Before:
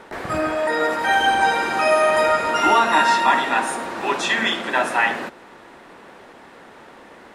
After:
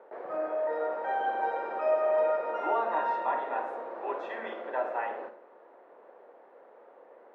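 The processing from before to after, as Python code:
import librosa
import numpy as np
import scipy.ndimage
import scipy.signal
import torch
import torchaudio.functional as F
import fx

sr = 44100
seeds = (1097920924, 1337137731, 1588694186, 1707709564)

y = fx.ladder_bandpass(x, sr, hz=600.0, resonance_pct=50)
y = fx.rev_schroeder(y, sr, rt60_s=0.44, comb_ms=31, drr_db=8.5)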